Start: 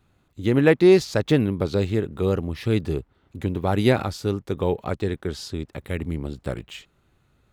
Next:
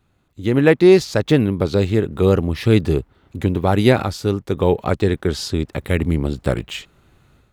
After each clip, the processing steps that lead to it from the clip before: level rider gain up to 10.5 dB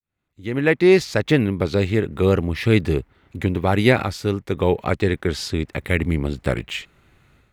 fade-in on the opening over 0.98 s; peaking EQ 2.1 kHz +7.5 dB 0.79 oct; trim -2.5 dB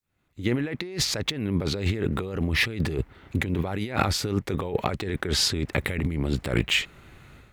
compressor with a negative ratio -27 dBFS, ratio -1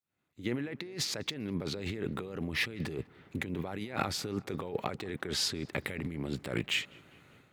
high-pass 130 Hz 12 dB/octave; filtered feedback delay 199 ms, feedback 70%, low-pass 2.8 kHz, level -24 dB; trim -8 dB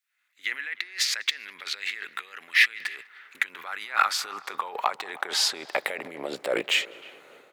speakerphone echo 310 ms, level -22 dB; high-pass sweep 1.8 kHz -> 490 Hz, 2.93–6.82 s; trim +7.5 dB

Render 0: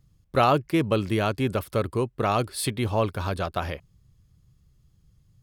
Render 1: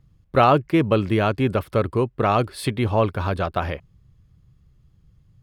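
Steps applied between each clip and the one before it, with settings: tone controls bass 0 dB, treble -11 dB; trim +4.5 dB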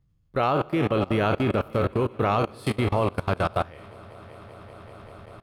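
spectral sustain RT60 0.46 s; multi-head delay 193 ms, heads all three, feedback 68%, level -19 dB; level held to a coarse grid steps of 22 dB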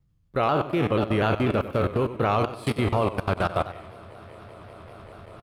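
feedback delay 95 ms, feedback 45%, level -13.5 dB; vibrato with a chosen wave saw down 4.1 Hz, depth 100 cents

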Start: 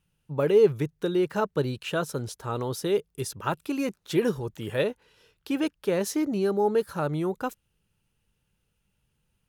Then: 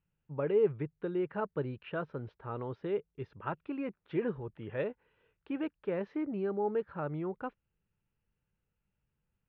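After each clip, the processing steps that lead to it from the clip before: inverse Chebyshev low-pass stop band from 7.6 kHz, stop band 60 dB; trim -8.5 dB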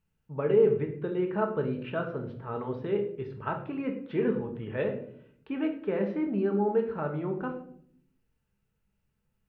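reverberation RT60 0.65 s, pre-delay 5 ms, DRR 3 dB; trim +3 dB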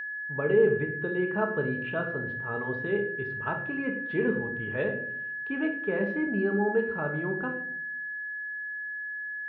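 whistle 1.7 kHz -33 dBFS

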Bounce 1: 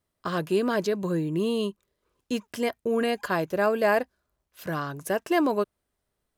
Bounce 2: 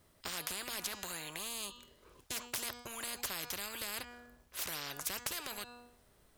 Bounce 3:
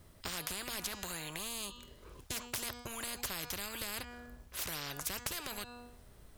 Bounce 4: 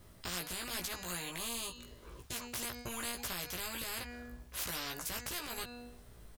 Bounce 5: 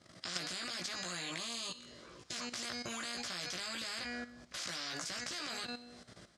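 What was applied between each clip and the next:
de-hum 241.9 Hz, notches 34; compression, threshold -24 dBFS, peak gain reduction 6.5 dB; spectrum-flattening compressor 10:1
bass shelf 170 Hz +9.5 dB; in parallel at +0.5 dB: compression, threshold -49 dBFS, peak gain reduction 16 dB; on the sum: trim -2 dB
peak limiter -27.5 dBFS, peak gain reduction 11 dB; doubling 17 ms -3 dB
cabinet simulation 200–7300 Hz, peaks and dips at 260 Hz -3 dB, 430 Hz -9 dB, 920 Hz -9 dB, 2.7 kHz -4 dB, 4.9 kHz +4 dB; level held to a coarse grid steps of 13 dB; thinning echo 63 ms, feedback 60%, level -18 dB; trim +10.5 dB

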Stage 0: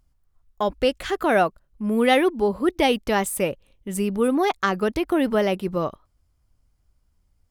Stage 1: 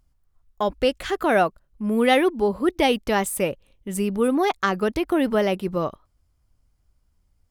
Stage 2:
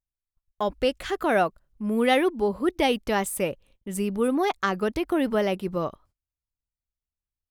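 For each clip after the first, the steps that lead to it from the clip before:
no audible change
gate -53 dBFS, range -25 dB; trim -3 dB

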